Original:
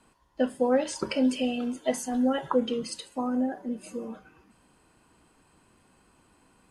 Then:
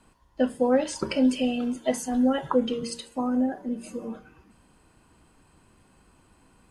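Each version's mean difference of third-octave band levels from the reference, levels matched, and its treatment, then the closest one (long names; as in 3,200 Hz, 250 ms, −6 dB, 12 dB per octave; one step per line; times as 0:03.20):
1.5 dB: low-shelf EQ 140 Hz +8.5 dB
hum removal 58.33 Hz, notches 8
level +1 dB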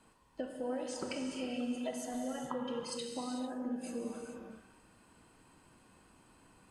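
8.0 dB: downward compressor 5 to 1, threshold −35 dBFS, peak gain reduction 15 dB
reverb whose tail is shaped and stops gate 470 ms flat, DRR 1.5 dB
level −3 dB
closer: first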